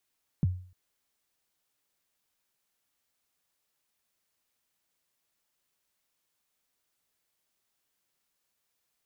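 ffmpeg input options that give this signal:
-f lavfi -i "aevalsrc='0.112*pow(10,-3*t/0.46)*sin(2*PI*(200*0.025/log(91/200)*(exp(log(91/200)*min(t,0.025)/0.025)-1)+91*max(t-0.025,0)))':d=0.3:s=44100"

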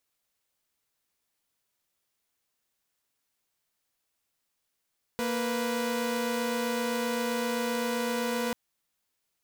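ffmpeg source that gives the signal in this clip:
-f lavfi -i "aevalsrc='0.0398*((2*mod(233.08*t,1)-1)+(2*mod(493.88*t,1)-1))':d=3.34:s=44100"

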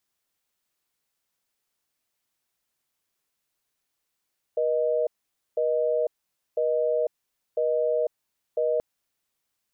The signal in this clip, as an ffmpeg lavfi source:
-f lavfi -i "aevalsrc='0.0631*(sin(2*PI*480*t)+sin(2*PI*620*t))*clip(min(mod(t,1),0.5-mod(t,1))/0.005,0,1)':d=4.23:s=44100"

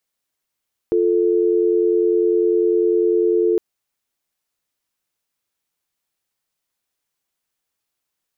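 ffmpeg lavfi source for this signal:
-f lavfi -i "aevalsrc='0.15*(sin(2*PI*350*t)+sin(2*PI*440*t))':d=2.66:s=44100"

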